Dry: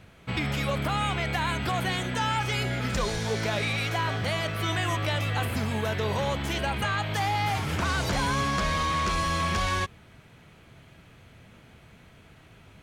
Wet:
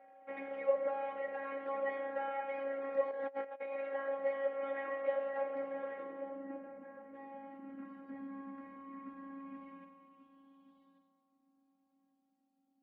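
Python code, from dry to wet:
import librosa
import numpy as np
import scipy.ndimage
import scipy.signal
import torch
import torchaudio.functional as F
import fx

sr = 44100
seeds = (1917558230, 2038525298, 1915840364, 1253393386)

y = fx.quant_companded(x, sr, bits=4)
y = fx.robotise(y, sr, hz=274.0)
y = fx.dereverb_blind(y, sr, rt60_s=0.98)
y = y + 10.0 ** (-53.0 / 20.0) * np.sin(2.0 * np.pi * 780.0 * np.arange(len(y)) / sr)
y = fx.filter_sweep_lowpass(y, sr, from_hz=540.0, to_hz=240.0, start_s=5.64, end_s=6.71, q=4.5)
y = fx.echo_feedback(y, sr, ms=1139, feedback_pct=18, wet_db=-11)
y = fx.filter_sweep_bandpass(y, sr, from_hz=2000.0, to_hz=4700.0, start_s=9.32, end_s=11.41, q=4.5)
y = fx.air_absorb(y, sr, metres=490.0, at=(6.04, 7.14))
y = fx.rev_fdn(y, sr, rt60_s=1.7, lf_ratio=0.85, hf_ratio=0.9, size_ms=31.0, drr_db=4.0)
y = fx.over_compress(y, sr, threshold_db=-53.0, ratio=-0.5, at=(3.11, 3.72))
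y = fx.low_shelf(y, sr, hz=160.0, db=-11.5)
y = y * 10.0 ** (13.0 / 20.0)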